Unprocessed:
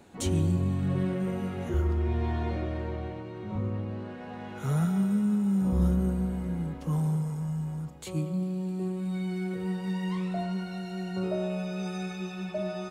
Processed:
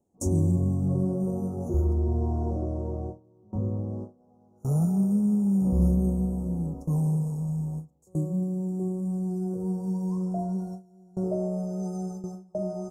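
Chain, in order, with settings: elliptic band-stop 1.2–5.3 kHz, stop band 40 dB; gate with hold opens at -27 dBFS; high-order bell 2.2 kHz -13 dB 2.5 oct; trim +2.5 dB

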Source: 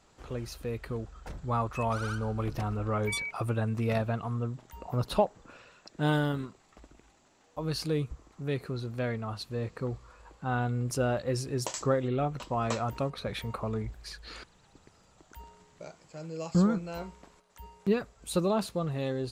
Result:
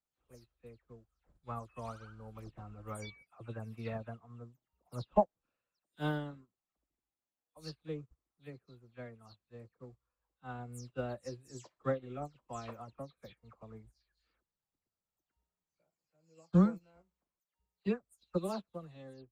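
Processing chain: delay that grows with frequency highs early, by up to 176 ms; upward expansion 2.5:1, over -44 dBFS

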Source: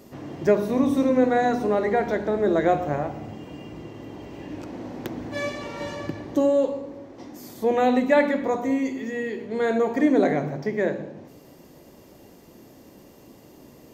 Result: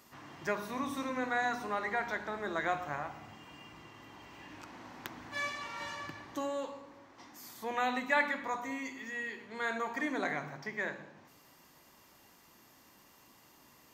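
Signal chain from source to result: resonant low shelf 750 Hz -12 dB, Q 1.5; trim -4.5 dB

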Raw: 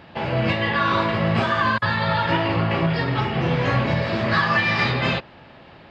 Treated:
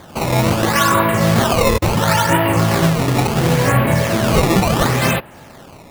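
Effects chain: low-pass 3 kHz 12 dB/octave; decimation with a swept rate 16×, swing 160% 0.72 Hz; trim +6.5 dB

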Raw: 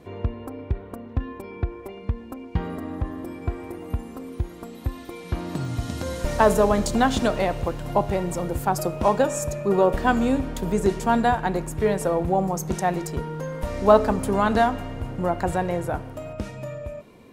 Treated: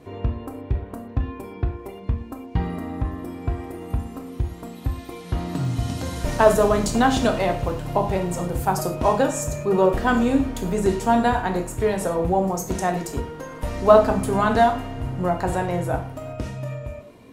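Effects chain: gated-style reverb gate 140 ms falling, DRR 3 dB

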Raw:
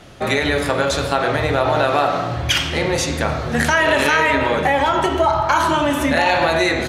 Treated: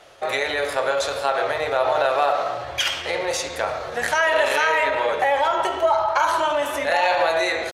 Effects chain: resonant low shelf 350 Hz -14 dB, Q 1.5; tempo 0.89×; trim -4.5 dB

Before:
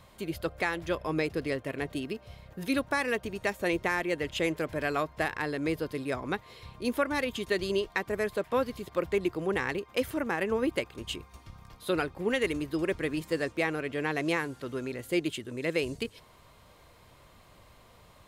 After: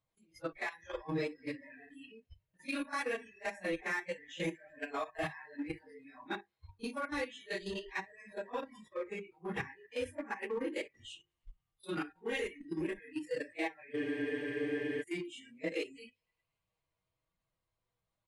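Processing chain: phase randomisation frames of 100 ms; on a send: thinning echo 104 ms, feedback 82%, high-pass 410 Hz, level -19 dB; on the sum: level held to a coarse grid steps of 15 dB; Chebyshev low-pass 11 kHz, order 8; bass shelf 160 Hz +4.5 dB; hum notches 50/100/150/200/250/300/350/400 Hz; spectral noise reduction 26 dB; peaking EQ 95 Hz +7.5 dB 0.23 oct; comb 6.2 ms, depth 42%; in parallel at -8 dB: hard clipper -37 dBFS, distortion -5 dB; on the sum: spectral freeze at 13.99 s, 1.03 s; trim -6 dB

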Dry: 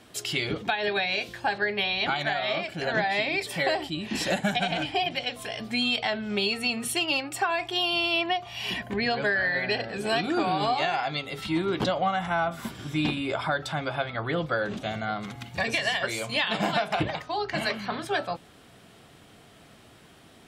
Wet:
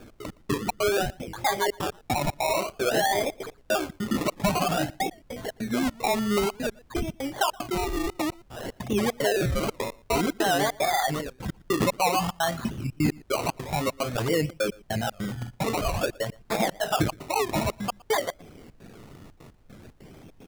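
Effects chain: resonances exaggerated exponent 2; low-pass 1.1 kHz 6 dB/octave; band-stop 690 Hz, Q 23; in parallel at +1 dB: peak limiter -24.5 dBFS, peak gain reduction 9 dB; on the sum: trance gate "x.x..xx.xxx.xxxx" 150 bpm -60 dB; added noise brown -56 dBFS; decimation with a swept rate 22×, swing 60% 0.53 Hz; echo from a far wall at 20 m, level -24 dB; warped record 78 rpm, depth 160 cents

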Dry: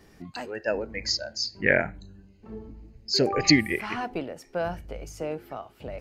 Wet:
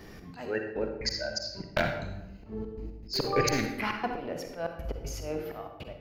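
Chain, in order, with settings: one-sided wavefolder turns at -18 dBFS; peaking EQ 8.4 kHz -14 dB 0.35 oct; in parallel at +2 dB: compression, threshold -37 dBFS, peak gain reduction 20 dB; on the sum: de-hum 266.2 Hz, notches 17; slow attack 200 ms; trance gate "xxxxx.x." 119 bpm -60 dB; on a send at -4.5 dB: reverberation RT60 0.90 s, pre-delay 41 ms

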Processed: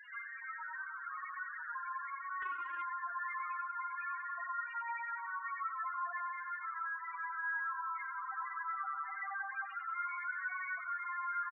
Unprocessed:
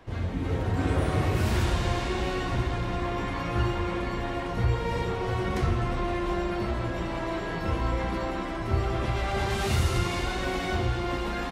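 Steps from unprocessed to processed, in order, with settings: one-bit delta coder 16 kbps, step -42.5 dBFS; high-pass 1.3 kHz 24 dB/octave; tilt EQ -2.5 dB/octave; loudest bins only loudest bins 4; feedback delay 93 ms, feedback 43%, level -10 dB; 2.42–2.82 s: loudspeaker Doppler distortion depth 0.38 ms; trim +11 dB

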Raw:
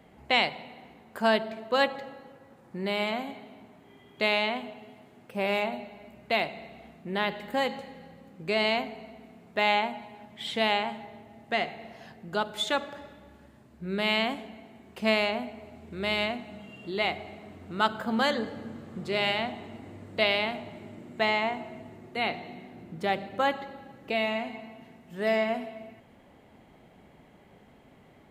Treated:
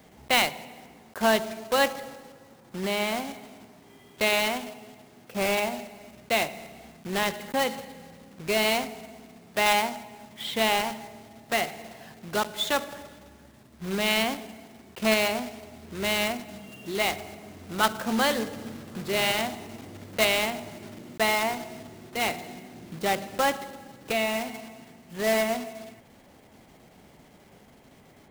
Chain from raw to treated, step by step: block-companded coder 3-bit; trim +1.5 dB

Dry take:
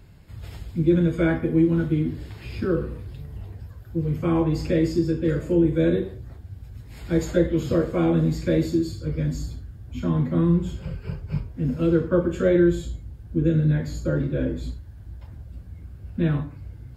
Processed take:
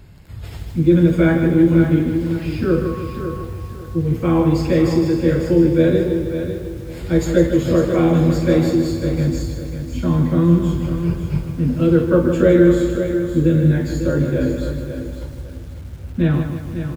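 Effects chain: 2.84–3.43 s: whistle 1.1 kHz -38 dBFS; feedback delay 549 ms, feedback 27%, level -9 dB; bit-crushed delay 155 ms, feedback 55%, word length 8-bit, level -8 dB; trim +5.5 dB

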